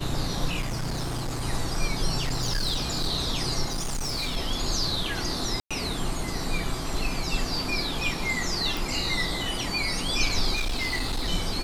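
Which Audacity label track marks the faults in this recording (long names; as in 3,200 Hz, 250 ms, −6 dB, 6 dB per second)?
0.600000	1.420000	clipping −26 dBFS
2.250000	3.090000	clipping −22.5 dBFS
3.660000	4.370000	clipping −25.5 dBFS
5.600000	5.710000	drop-out 106 ms
8.770000	8.770000	click
10.550000	11.290000	clipping −23.5 dBFS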